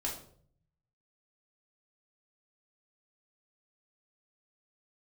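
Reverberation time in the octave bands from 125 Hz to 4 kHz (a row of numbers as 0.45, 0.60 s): 1.2, 0.75, 0.65, 0.50, 0.40, 0.40 s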